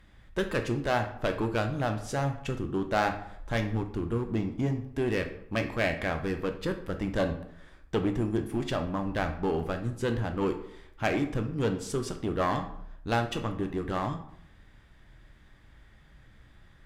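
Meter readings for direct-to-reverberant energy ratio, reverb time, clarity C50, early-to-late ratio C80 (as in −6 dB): 6.0 dB, 0.70 s, 10.0 dB, 13.5 dB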